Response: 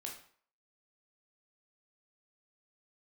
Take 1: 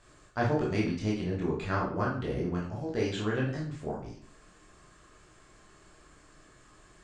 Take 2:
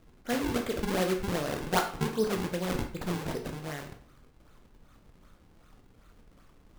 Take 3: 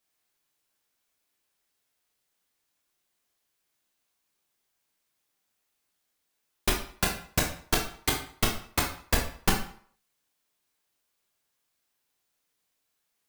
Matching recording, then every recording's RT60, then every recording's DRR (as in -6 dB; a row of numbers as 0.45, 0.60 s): 3; 0.50, 0.50, 0.50 s; -5.0, 3.5, -0.5 dB